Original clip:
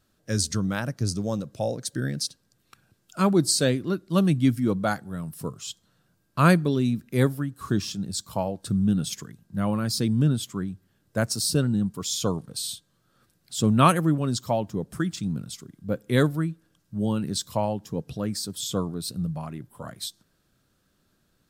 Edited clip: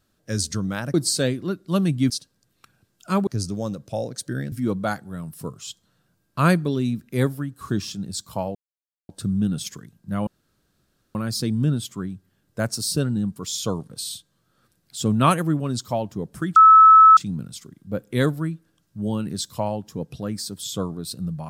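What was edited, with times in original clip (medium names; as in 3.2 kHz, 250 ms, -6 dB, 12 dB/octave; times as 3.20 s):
0.94–2.19 s: swap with 3.36–4.52 s
8.55 s: insert silence 0.54 s
9.73 s: insert room tone 0.88 s
15.14 s: add tone 1.3 kHz -6.5 dBFS 0.61 s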